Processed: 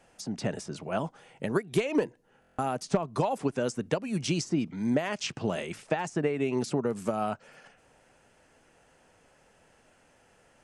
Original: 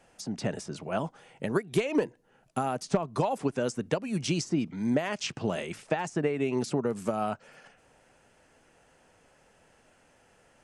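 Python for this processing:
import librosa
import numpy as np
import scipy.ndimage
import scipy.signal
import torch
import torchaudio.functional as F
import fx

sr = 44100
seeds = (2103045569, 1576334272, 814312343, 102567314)

y = fx.buffer_glitch(x, sr, at_s=(2.4,), block=1024, repeats=7)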